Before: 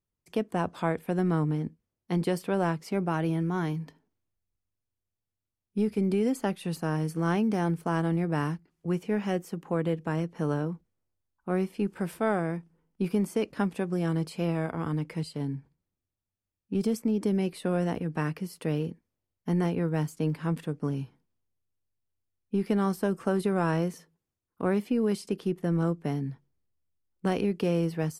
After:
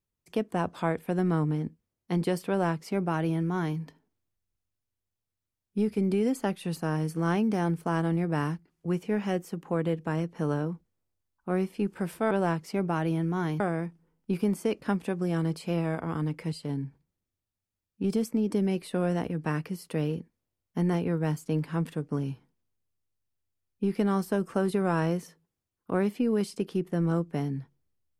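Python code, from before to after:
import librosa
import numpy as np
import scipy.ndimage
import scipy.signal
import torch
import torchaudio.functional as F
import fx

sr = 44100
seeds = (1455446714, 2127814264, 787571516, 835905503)

y = fx.edit(x, sr, fx.duplicate(start_s=2.49, length_s=1.29, to_s=12.31), tone=tone)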